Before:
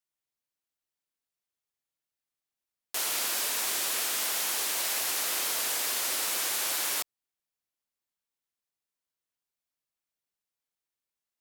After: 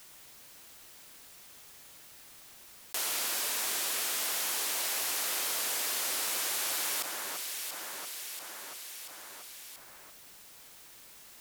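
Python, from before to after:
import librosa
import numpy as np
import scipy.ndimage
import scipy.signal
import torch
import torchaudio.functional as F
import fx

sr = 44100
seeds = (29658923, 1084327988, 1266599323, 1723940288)

p1 = x + fx.echo_alternate(x, sr, ms=342, hz=1900.0, feedback_pct=54, wet_db=-12.5, dry=0)
p2 = fx.env_flatten(p1, sr, amount_pct=70)
y = p2 * 10.0 ** (-3.0 / 20.0)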